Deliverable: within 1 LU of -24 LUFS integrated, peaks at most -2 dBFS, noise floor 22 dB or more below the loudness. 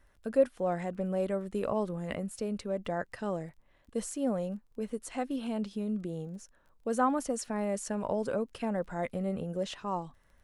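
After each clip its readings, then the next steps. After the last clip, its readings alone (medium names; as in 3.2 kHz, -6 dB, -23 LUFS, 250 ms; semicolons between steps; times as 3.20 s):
tick rate 18 per s; loudness -34.0 LUFS; peak level -13.5 dBFS; loudness target -24.0 LUFS
-> de-click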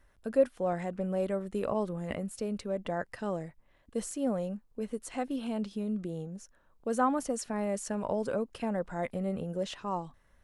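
tick rate 0 per s; loudness -34.0 LUFS; peak level -13.5 dBFS; loudness target -24.0 LUFS
-> trim +10 dB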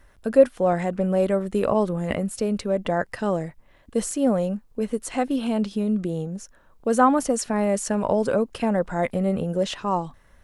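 loudness -24.0 LUFS; peak level -3.5 dBFS; noise floor -55 dBFS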